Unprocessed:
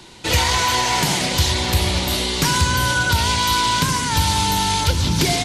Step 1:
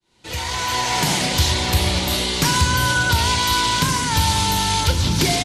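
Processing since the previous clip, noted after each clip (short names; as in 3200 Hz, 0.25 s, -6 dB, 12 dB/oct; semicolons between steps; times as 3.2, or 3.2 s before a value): opening faded in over 1.12 s; doubler 39 ms -13 dB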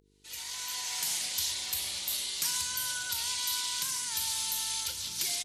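buzz 50 Hz, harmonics 9, -33 dBFS -4 dB/oct; pre-emphasis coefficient 0.97; gain -7 dB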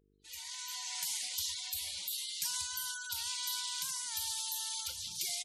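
spectral gate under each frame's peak -15 dB strong; gain -4.5 dB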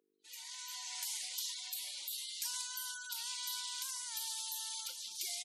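HPF 300 Hz 24 dB/oct; gain -3.5 dB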